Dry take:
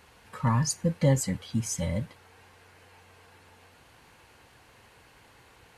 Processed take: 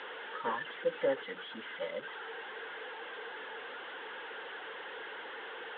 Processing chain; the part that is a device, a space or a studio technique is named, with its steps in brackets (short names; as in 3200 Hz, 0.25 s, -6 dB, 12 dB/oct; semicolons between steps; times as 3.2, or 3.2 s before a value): 0.85–1.92 notches 60/120/180/240/300/360/420/480 Hz; reverb removal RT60 0.67 s; digital answering machine (BPF 390–3400 Hz; delta modulation 16 kbps, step -38.5 dBFS; speaker cabinet 420–4500 Hz, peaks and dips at 450 Hz +7 dB, 670 Hz -8 dB, 1100 Hz -5 dB, 1600 Hz +4 dB, 2400 Hz -10 dB, 3400 Hz +7 dB); gain +2 dB